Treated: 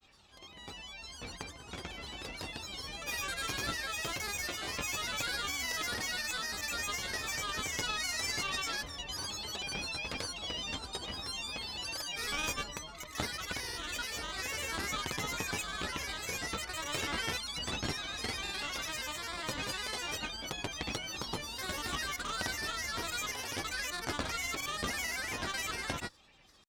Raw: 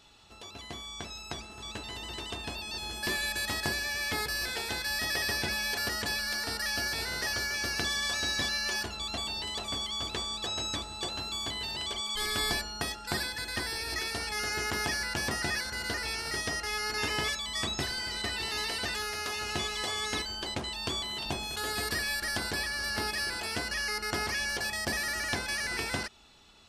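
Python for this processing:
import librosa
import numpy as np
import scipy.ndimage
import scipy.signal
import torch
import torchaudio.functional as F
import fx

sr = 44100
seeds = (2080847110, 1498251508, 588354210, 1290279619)

y = fx.granulator(x, sr, seeds[0], grain_ms=100.0, per_s=20.0, spray_ms=100.0, spread_st=7)
y = fx.cheby_harmonics(y, sr, harmonics=(4,), levels_db=(-16,), full_scale_db=-15.5)
y = F.gain(torch.from_numpy(y), -3.0).numpy()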